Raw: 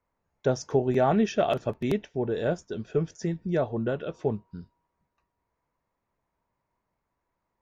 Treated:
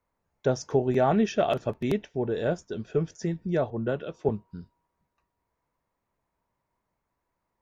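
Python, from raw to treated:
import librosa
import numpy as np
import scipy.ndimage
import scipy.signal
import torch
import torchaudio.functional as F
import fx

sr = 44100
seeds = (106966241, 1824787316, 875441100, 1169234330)

y = fx.band_widen(x, sr, depth_pct=70, at=(3.7, 4.29))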